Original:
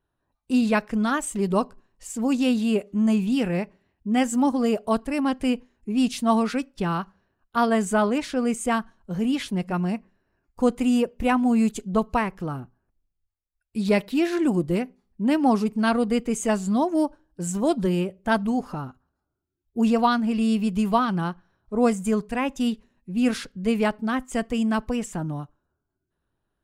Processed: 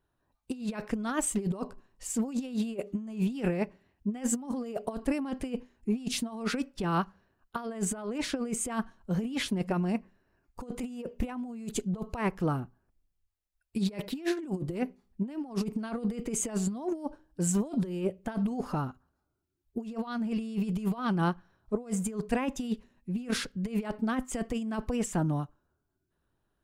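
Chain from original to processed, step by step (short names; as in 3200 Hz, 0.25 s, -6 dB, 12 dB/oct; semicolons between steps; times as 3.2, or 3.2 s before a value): dynamic EQ 410 Hz, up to +4 dB, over -32 dBFS, Q 1.1; negative-ratio compressor -25 dBFS, ratio -0.5; gain -5 dB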